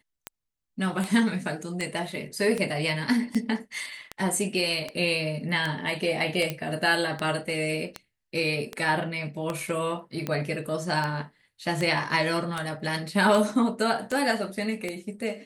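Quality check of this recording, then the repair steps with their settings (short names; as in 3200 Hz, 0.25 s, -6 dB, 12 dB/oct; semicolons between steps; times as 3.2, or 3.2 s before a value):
tick 78 rpm -15 dBFS
6.5 pop -14 dBFS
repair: de-click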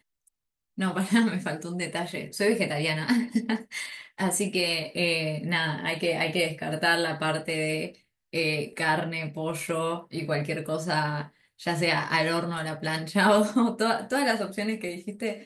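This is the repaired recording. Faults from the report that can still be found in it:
none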